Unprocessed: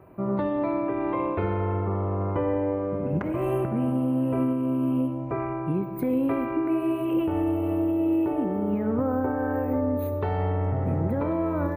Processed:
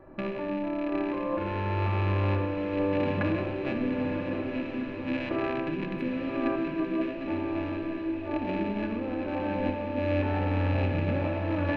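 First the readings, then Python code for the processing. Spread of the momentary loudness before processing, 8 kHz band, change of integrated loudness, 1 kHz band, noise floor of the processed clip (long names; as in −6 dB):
3 LU, can't be measured, −3.5 dB, −3.0 dB, −35 dBFS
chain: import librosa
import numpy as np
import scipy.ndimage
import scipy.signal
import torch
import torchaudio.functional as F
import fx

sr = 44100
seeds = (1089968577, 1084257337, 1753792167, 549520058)

p1 = fx.rattle_buzz(x, sr, strikes_db=-33.0, level_db=-23.0)
p2 = fx.highpass(p1, sr, hz=160.0, slope=6)
p3 = fx.high_shelf(p2, sr, hz=3500.0, db=8.0)
p4 = fx.over_compress(p3, sr, threshold_db=-29.0, ratio=-0.5)
p5 = fx.dmg_noise_colour(p4, sr, seeds[0], colour='brown', level_db=-57.0)
p6 = fx.spacing_loss(p5, sr, db_at_10k=35)
p7 = fx.small_body(p6, sr, hz=(1700.0, 4000.0), ring_ms=40, db=13)
p8 = p7 + fx.echo_diffused(p7, sr, ms=983, feedback_pct=45, wet_db=-5.5, dry=0)
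p9 = fx.room_shoebox(p8, sr, seeds[1], volume_m3=3600.0, walls='furnished', distance_m=2.4)
y = p9 * librosa.db_to_amplitude(-2.0)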